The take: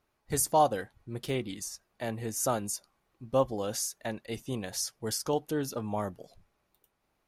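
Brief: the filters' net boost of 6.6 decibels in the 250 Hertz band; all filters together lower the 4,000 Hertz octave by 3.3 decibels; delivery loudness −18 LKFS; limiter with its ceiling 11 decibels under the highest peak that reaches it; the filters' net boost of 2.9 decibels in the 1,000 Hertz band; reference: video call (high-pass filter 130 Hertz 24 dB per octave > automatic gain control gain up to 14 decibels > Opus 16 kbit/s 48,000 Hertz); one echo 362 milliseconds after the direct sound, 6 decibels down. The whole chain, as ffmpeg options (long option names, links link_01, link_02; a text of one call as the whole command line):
ffmpeg -i in.wav -af "equalizer=frequency=250:width_type=o:gain=8,equalizer=frequency=1000:width_type=o:gain=3.5,equalizer=frequency=4000:width_type=o:gain=-5,alimiter=limit=-20.5dB:level=0:latency=1,highpass=frequency=130:width=0.5412,highpass=frequency=130:width=1.3066,aecho=1:1:362:0.501,dynaudnorm=maxgain=14dB,volume=15dB" -ar 48000 -c:a libopus -b:a 16k out.opus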